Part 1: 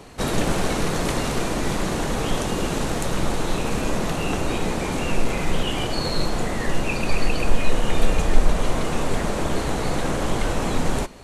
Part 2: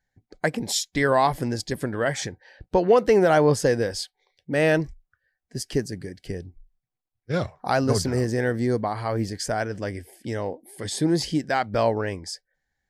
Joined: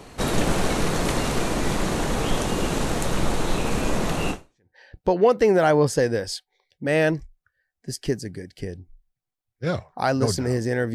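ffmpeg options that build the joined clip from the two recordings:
-filter_complex "[0:a]apad=whole_dur=10.94,atrim=end=10.94,atrim=end=4.76,asetpts=PTS-STARTPTS[a];[1:a]atrim=start=1.97:end=8.61,asetpts=PTS-STARTPTS[b];[a][b]acrossfade=d=0.46:c1=exp:c2=exp"

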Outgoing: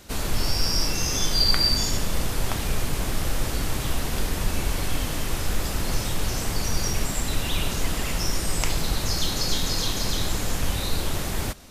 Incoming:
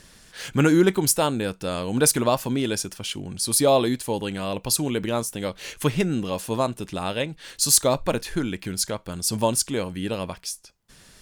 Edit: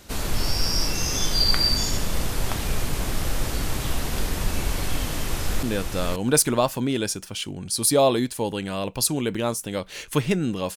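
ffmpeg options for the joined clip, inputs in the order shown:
-filter_complex "[0:a]apad=whole_dur=10.76,atrim=end=10.76,atrim=end=5.632[a];[1:a]atrim=start=1.318:end=6.45[b];[a][b]acrossfade=d=0.004:c1=hsin:c2=hsin,asplit=2[c][d];[d]afade=t=in:st=5.1:d=0.01,afade=t=out:st=5.63:d=0.01,aecho=0:1:530|1060:0.595662|0.0595662[e];[c][e]amix=inputs=2:normalize=0"

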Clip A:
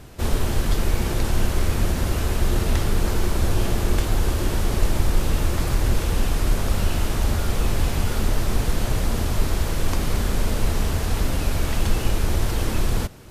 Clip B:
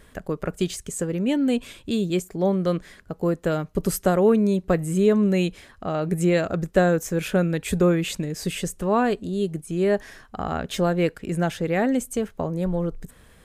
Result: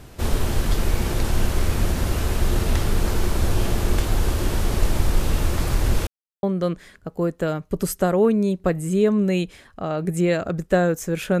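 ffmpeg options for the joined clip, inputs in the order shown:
-filter_complex "[0:a]apad=whole_dur=11.4,atrim=end=11.4,asplit=2[a][b];[a]atrim=end=6.07,asetpts=PTS-STARTPTS,afade=t=out:st=6.066:d=0.004:c=hsin[c];[b]atrim=start=6.07:end=6.43,asetpts=PTS-STARTPTS,volume=0[d];[1:a]atrim=start=2.47:end=7.44,asetpts=PTS-STARTPTS,afade=t=in:d=0.004:c=hsin[e];[c][d][e]concat=n=3:v=0:a=1"

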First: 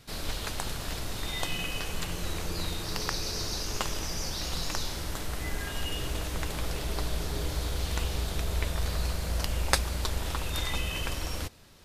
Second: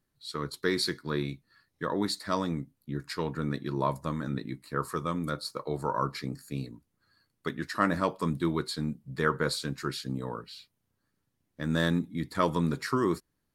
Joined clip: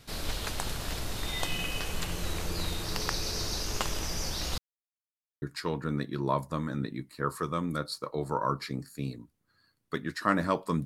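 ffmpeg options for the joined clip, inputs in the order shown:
-filter_complex "[0:a]apad=whole_dur=10.85,atrim=end=10.85,asplit=2[a][b];[a]atrim=end=4.58,asetpts=PTS-STARTPTS,afade=t=out:st=4.576:d=0.004:c=hsin[c];[b]atrim=start=4.58:end=5.42,asetpts=PTS-STARTPTS,volume=0[d];[1:a]atrim=start=2.95:end=8.38,asetpts=PTS-STARTPTS,afade=t=in:d=0.004:c=hsin[e];[c][d][e]concat=n=3:v=0:a=1"

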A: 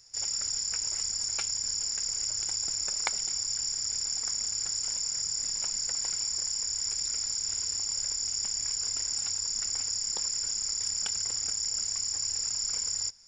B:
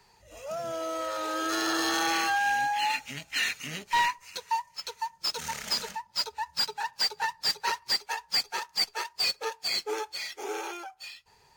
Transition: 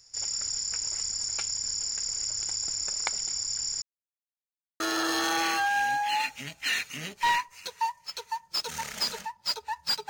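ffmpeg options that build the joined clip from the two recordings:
-filter_complex "[0:a]apad=whole_dur=10.09,atrim=end=10.09,asplit=2[a][b];[a]atrim=end=3.82,asetpts=PTS-STARTPTS,afade=t=out:st=3.816:d=0.004:c=hsin[c];[b]atrim=start=3.82:end=4.8,asetpts=PTS-STARTPTS,volume=0[d];[1:a]atrim=start=1.5:end=6.79,asetpts=PTS-STARTPTS,afade=t=in:d=0.004:c=hsin[e];[c][d][e]concat=n=3:v=0:a=1"

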